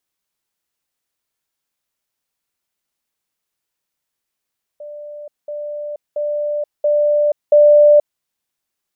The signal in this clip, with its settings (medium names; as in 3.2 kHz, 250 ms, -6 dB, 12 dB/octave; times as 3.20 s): level ladder 591 Hz -29.5 dBFS, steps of 6 dB, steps 5, 0.48 s 0.20 s